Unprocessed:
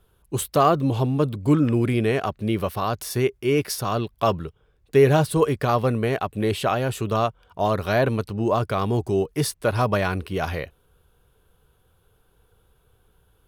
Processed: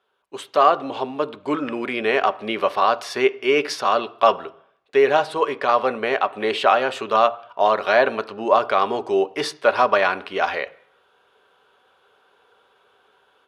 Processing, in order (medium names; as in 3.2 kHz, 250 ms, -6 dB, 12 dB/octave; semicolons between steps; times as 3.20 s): level rider; band-pass 600–3700 Hz; on a send: reverberation RT60 0.60 s, pre-delay 3 ms, DRR 12.5 dB